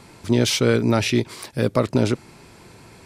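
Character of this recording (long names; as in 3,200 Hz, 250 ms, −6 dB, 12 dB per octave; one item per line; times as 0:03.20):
background noise floor −48 dBFS
spectral slope −5.0 dB per octave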